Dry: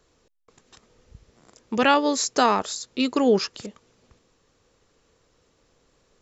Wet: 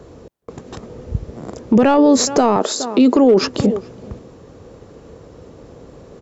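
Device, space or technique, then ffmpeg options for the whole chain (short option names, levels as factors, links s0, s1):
mastering chain: -filter_complex "[0:a]asettb=1/sr,asplit=3[s0][s1][s2];[s0]atrim=end=2.564[s3];[s1]atrim=start=2.56:end=3.41,asetpts=PTS-STARTPTS,afade=t=in:d=0.004:c=qsin,afade=t=out:st=0.846:d=0.004:c=qsin,highpass=f=230:w=0.5412,highpass=f=230:w=1.3066[s4];[s2]atrim=start=3.406[s5];[s3][s4]acrossfade=d=0.004:c1=hsin:c2=qsin[s6];[s6][s5]acrossfade=d=0.004:c1=qsin:c2=hsin,highpass=59,equalizer=f=610:t=o:w=1.2:g=2.5,asplit=2[s7][s8];[s8]adelay=419.8,volume=0.0355,highshelf=f=4000:g=-9.45[s9];[s7][s9]amix=inputs=2:normalize=0,acompressor=threshold=0.0447:ratio=1.5,asoftclip=type=tanh:threshold=0.237,tiltshelf=f=970:g=9.5,asoftclip=type=hard:threshold=0.299,alimiter=level_in=13.3:limit=0.891:release=50:level=0:latency=1,volume=0.631"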